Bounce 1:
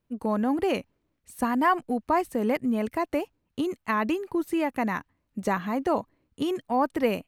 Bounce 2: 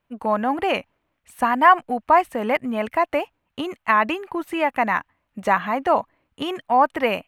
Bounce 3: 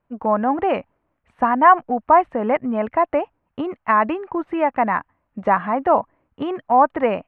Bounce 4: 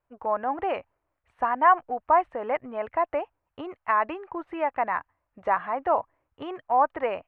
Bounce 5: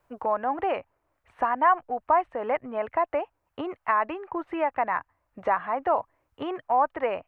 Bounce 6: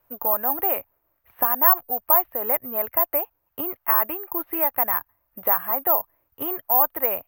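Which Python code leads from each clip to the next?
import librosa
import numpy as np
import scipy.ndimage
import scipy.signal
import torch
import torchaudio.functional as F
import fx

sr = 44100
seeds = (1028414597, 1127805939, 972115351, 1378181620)

y1 = fx.band_shelf(x, sr, hz=1400.0, db=10.5, octaves=2.8)
y1 = y1 * librosa.db_to_amplitude(-1.0)
y2 = scipy.signal.sosfilt(scipy.signal.butter(2, 1400.0, 'lowpass', fs=sr, output='sos'), y1)
y2 = y2 * librosa.db_to_amplitude(3.0)
y3 = fx.peak_eq(y2, sr, hz=210.0, db=-14.5, octaves=0.98)
y3 = y3 * librosa.db_to_amplitude(-6.0)
y4 = fx.band_squash(y3, sr, depth_pct=40)
y5 = (np.kron(scipy.signal.resample_poly(y4, 1, 3), np.eye(3)[0]) * 3)[:len(y4)]
y5 = y5 * librosa.db_to_amplitude(-1.0)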